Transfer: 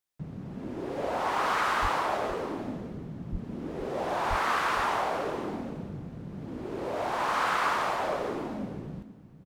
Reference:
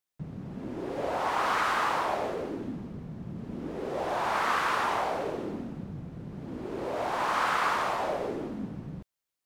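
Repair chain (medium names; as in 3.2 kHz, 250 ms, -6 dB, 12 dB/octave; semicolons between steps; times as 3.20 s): clip repair -19 dBFS; de-plosive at 1.81/3.31/4.29 s; inverse comb 464 ms -12.5 dB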